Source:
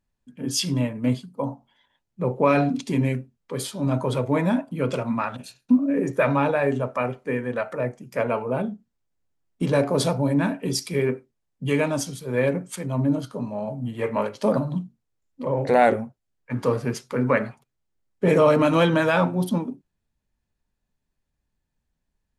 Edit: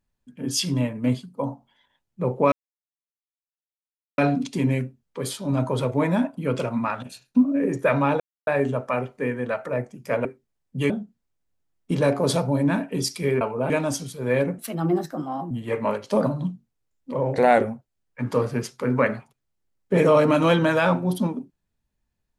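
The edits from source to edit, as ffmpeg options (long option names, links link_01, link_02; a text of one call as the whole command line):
ffmpeg -i in.wav -filter_complex "[0:a]asplit=9[link_01][link_02][link_03][link_04][link_05][link_06][link_07][link_08][link_09];[link_01]atrim=end=2.52,asetpts=PTS-STARTPTS,afade=type=out:start_time=2.516:duration=0.004:curve=hsin,apad=pad_dur=1.66[link_10];[link_02]atrim=start=2.52:end=6.54,asetpts=PTS-STARTPTS,afade=type=in:duration=0.004:curve=hsin,afade=type=out:start_time=4.016:duration=0.004:curve=hsin,apad=pad_dur=0.27[link_11];[link_03]atrim=start=6.54:end=8.322,asetpts=PTS-STARTPTS,afade=type=in:duration=0.004:curve=hsin[link_12];[link_04]atrim=start=11.118:end=11.772[link_13];[link_05]atrim=start=8.608:end=11.122[link_14];[link_06]atrim=start=8.318:end=8.612[link_15];[link_07]atrim=start=11.768:end=12.654[link_16];[link_08]atrim=start=12.65:end=13.82,asetpts=PTS-STARTPTS,asetrate=55566,aresample=44100[link_17];[link_09]atrim=start=13.816[link_18];[link_10][link_11][link_12]concat=n=3:v=0:a=1[link_19];[link_19][link_13]acrossfade=duration=0.004:curve1=hsin:curve2=hsin[link_20];[link_20][link_14]acrossfade=duration=0.004:curve1=hsin:curve2=hsin[link_21];[link_21][link_15]acrossfade=duration=0.004:curve1=hsin:curve2=hsin[link_22];[link_22][link_16]acrossfade=duration=0.004:curve1=hsin:curve2=hsin[link_23];[link_23][link_17]acrossfade=duration=0.004:curve1=hsin:curve2=hsin[link_24];[link_24][link_18]acrossfade=duration=0.004:curve1=hsin:curve2=hsin" out.wav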